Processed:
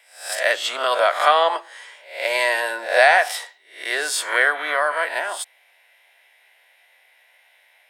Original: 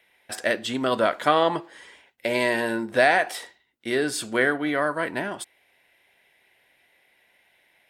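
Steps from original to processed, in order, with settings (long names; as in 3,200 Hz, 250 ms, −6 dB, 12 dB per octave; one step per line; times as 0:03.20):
peak hold with a rise ahead of every peak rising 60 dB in 0.47 s
high-pass filter 580 Hz 24 dB per octave
level +4.5 dB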